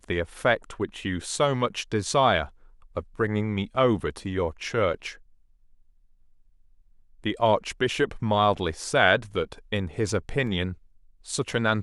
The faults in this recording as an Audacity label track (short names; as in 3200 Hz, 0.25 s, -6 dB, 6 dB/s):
10.470000	10.470000	gap 2 ms